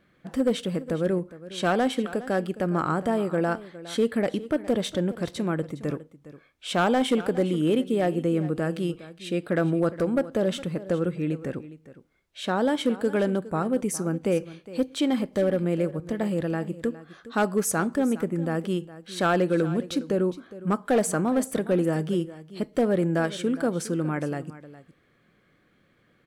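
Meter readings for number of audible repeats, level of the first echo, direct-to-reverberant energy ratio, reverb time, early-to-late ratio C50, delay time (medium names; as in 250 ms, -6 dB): 1, -16.5 dB, no reverb, no reverb, no reverb, 411 ms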